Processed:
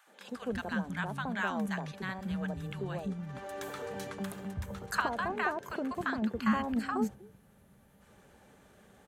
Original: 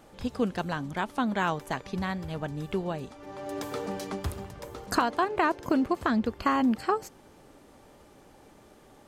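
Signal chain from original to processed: high-pass 42 Hz; time-frequency box 7.15–8.02 s, 220–9500 Hz -8 dB; graphic EQ with 31 bands 200 Hz +8 dB, 315 Hz -8 dB, 1.6 kHz +6 dB, 5 kHz -6 dB; in parallel at -1 dB: level held to a coarse grid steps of 21 dB; on the sum: three bands offset in time highs, mids, lows 70/320 ms, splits 240/920 Hz; trim -6 dB

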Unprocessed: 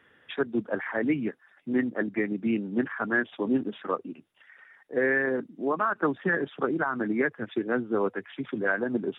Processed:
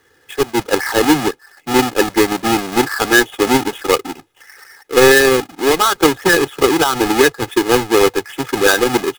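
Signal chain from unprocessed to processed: square wave that keeps the level; comb 2.4 ms, depth 67%; level rider gain up to 11.5 dB

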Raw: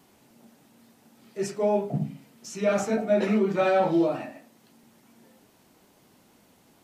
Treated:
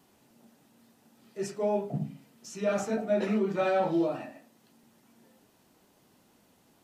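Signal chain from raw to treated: band-stop 2.2 kHz, Q 22; trim -4.5 dB

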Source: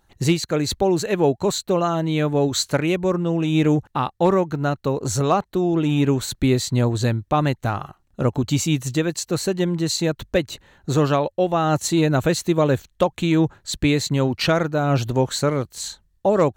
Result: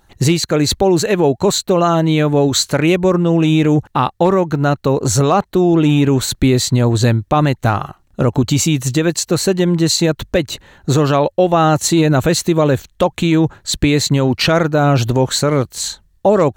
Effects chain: peak limiter -12.5 dBFS, peak gain reduction 5.5 dB; trim +8.5 dB

